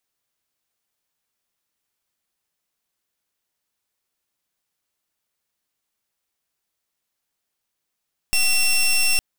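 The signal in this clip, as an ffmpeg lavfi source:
ffmpeg -f lavfi -i "aevalsrc='0.133*(2*lt(mod(2710*t,1),0.16)-1)':duration=0.86:sample_rate=44100" out.wav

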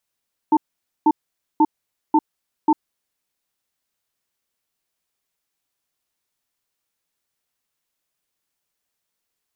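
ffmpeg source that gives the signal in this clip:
ffmpeg -f lavfi -i "aevalsrc='0.211*(sin(2*PI*311*t)+sin(2*PI*893*t))*clip(min(mod(t,0.54),0.05-mod(t,0.54))/0.005,0,1)':duration=2.33:sample_rate=44100" out.wav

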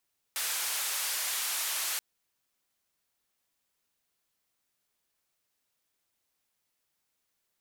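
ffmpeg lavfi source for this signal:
ffmpeg -f lavfi -i "anoisesrc=color=white:duration=1.63:sample_rate=44100:seed=1,highpass=frequency=880,lowpass=frequency=14000,volume=-25.4dB" out.wav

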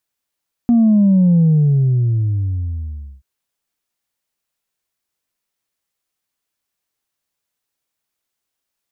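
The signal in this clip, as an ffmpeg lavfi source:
ffmpeg -f lavfi -i "aevalsrc='0.355*clip((2.53-t)/1.83,0,1)*tanh(1.06*sin(2*PI*240*2.53/log(65/240)*(exp(log(65/240)*t/2.53)-1)))/tanh(1.06)':duration=2.53:sample_rate=44100" out.wav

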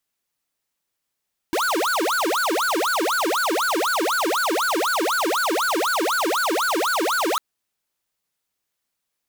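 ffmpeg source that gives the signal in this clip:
ffmpeg -f lavfi -i "aevalsrc='0.0841*(2*lt(mod((905*t-595/(2*PI*4)*sin(2*PI*4*t)),1),0.5)-1)':duration=5.85:sample_rate=44100" out.wav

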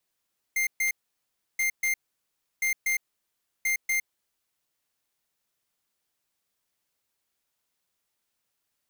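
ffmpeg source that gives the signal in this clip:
ffmpeg -f lavfi -i "aevalsrc='0.0531*(2*lt(mod(2100*t,1),0.5)-1)*clip(min(mod(mod(t,1.03),0.24),0.11-mod(mod(t,1.03),0.24))/0.005,0,1)*lt(mod(t,1.03),0.48)':duration=4.12:sample_rate=44100" out.wav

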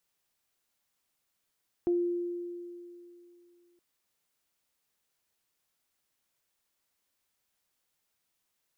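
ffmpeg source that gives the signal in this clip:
ffmpeg -f lavfi -i "aevalsrc='0.0708*pow(10,-3*t/2.74)*sin(2*PI*349*t)+0.00891*pow(10,-3*t/0.22)*sin(2*PI*698*t)':duration=1.92:sample_rate=44100" out.wav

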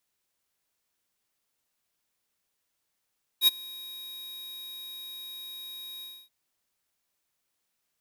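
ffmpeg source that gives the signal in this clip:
ffmpeg -f lavfi -i "aevalsrc='0.133*(2*lt(mod(3790*t,1),0.5)-1)':duration=2.879:sample_rate=44100,afade=type=in:duration=0.064,afade=type=out:start_time=0.064:duration=0.021:silence=0.0631,afade=type=out:start_time=2.61:duration=0.269" out.wav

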